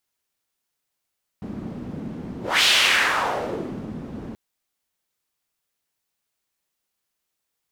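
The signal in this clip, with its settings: whoosh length 2.93 s, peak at 1.21 s, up 0.24 s, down 1.34 s, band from 210 Hz, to 3.2 kHz, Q 2, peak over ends 16.5 dB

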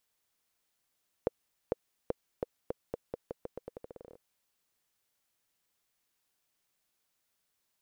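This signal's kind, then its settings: bouncing ball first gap 0.45 s, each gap 0.85, 488 Hz, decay 22 ms -15 dBFS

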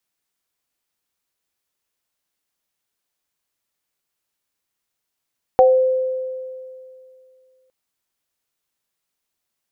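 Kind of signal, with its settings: sine partials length 2.11 s, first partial 517 Hz, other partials 756 Hz, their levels -1 dB, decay 2.48 s, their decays 0.29 s, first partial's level -8 dB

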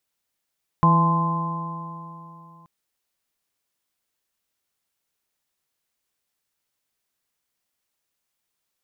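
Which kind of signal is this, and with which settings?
stretched partials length 1.83 s, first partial 164 Hz, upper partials -14/-17.5/-16/-9.5/0 dB, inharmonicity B 0.0031, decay 3.08 s, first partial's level -15 dB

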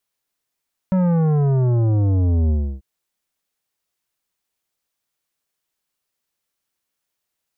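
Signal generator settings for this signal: sub drop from 190 Hz, over 1.89 s, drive 11.5 dB, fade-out 0.31 s, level -15.5 dB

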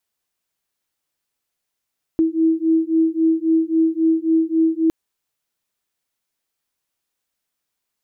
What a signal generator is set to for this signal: beating tones 322 Hz, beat 3.7 Hz, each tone -17.5 dBFS 2.71 s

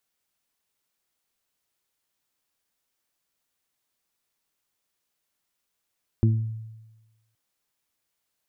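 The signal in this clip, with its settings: additive tone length 1.12 s, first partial 111 Hz, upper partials -6/-10 dB, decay 1.14 s, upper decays 0.46/0.33 s, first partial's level -15 dB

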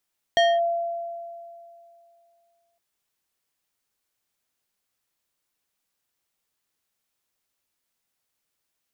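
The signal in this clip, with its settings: FM tone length 2.41 s, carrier 682 Hz, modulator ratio 3.7, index 0.85, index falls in 0.23 s linear, decay 2.55 s, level -14 dB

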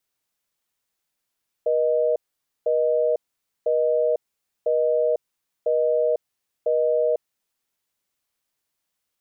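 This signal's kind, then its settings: call progress tone busy tone, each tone -20.5 dBFS 5.84 s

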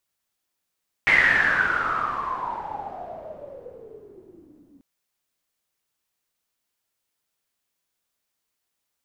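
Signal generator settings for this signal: swept filtered noise white, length 3.74 s lowpass, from 2.1 kHz, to 270 Hz, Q 12, exponential, gain ramp -28 dB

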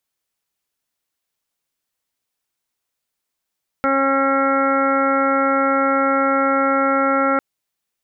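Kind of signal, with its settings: steady additive tone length 3.55 s, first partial 272 Hz, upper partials 1/-4/-9.5/3/-13/-10/-9 dB, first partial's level -21 dB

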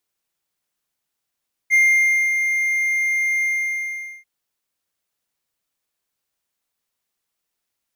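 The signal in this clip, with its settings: ADSR triangle 2.11 kHz, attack 39 ms, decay 578 ms, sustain -6.5 dB, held 1.73 s, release 811 ms -9 dBFS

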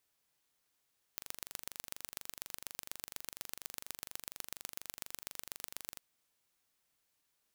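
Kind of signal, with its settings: pulse train 24.2 per s, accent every 3, -12 dBFS 4.82 s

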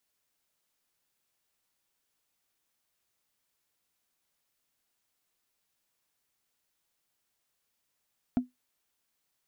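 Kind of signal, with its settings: wood hit, lowest mode 250 Hz, decay 0.16 s, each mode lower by 11 dB, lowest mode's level -18.5 dB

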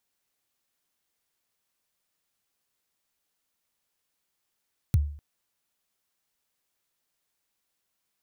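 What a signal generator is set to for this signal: kick drum length 0.25 s, from 140 Hz, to 73 Hz, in 29 ms, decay 0.50 s, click on, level -14.5 dB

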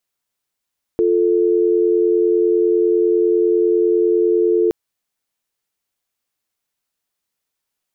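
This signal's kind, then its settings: call progress tone dial tone, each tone -15 dBFS 3.72 s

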